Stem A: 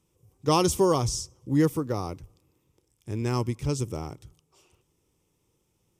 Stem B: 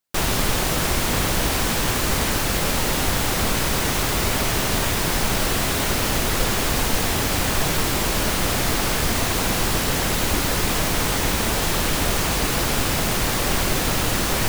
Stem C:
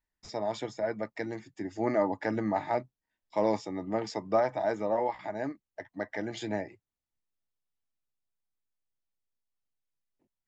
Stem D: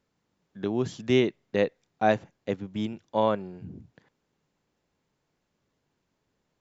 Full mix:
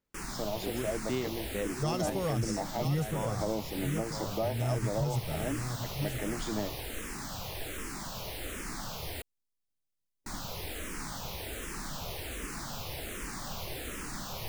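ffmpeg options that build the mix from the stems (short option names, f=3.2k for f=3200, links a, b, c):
-filter_complex "[0:a]equalizer=f=140:t=o:w=0.62:g=8,aecho=1:1:1.5:0.65,adelay=1350,volume=-7dB,asplit=2[a][b];[b]volume=-9.5dB[c];[1:a]asplit=2[d][e];[e]afreqshift=-1.3[f];[d][f]amix=inputs=2:normalize=1,volume=-15dB,asplit=3[g][h][i];[g]atrim=end=9.22,asetpts=PTS-STARTPTS,afade=t=out:st=9.216:d=0.004:c=hsin[j];[h]atrim=start=9.22:end=10.26,asetpts=PTS-STARTPTS,volume=0[k];[i]atrim=start=10.26,asetpts=PTS-STARTPTS,afade=t=in:d=0.004:c=hsin[l];[j][k][l]concat=n=3:v=0:a=1[m];[2:a]equalizer=f=1.4k:t=o:w=1.9:g=-9.5,adelay=50,volume=1dB[n];[3:a]volume=-10dB,asplit=2[o][p];[p]volume=-8dB[q];[c][q]amix=inputs=2:normalize=0,aecho=0:1:980:1[r];[a][m][n][o][r]amix=inputs=5:normalize=0,alimiter=limit=-21.5dB:level=0:latency=1:release=230"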